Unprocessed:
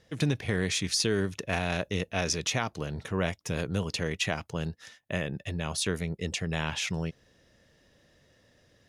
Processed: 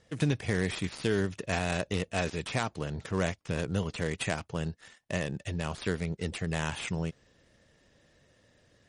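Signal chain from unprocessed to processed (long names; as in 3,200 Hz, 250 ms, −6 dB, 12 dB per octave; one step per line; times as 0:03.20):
gap after every zero crossing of 0.093 ms
MP3 40 kbit/s 44,100 Hz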